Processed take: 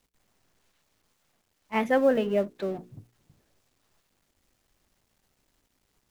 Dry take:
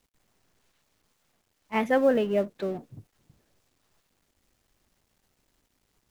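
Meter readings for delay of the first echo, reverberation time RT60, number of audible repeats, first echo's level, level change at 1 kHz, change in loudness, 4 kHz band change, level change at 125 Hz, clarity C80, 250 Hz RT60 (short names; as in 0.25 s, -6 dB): none, none, none, none, 0.0 dB, 0.0 dB, 0.0 dB, -0.5 dB, none, none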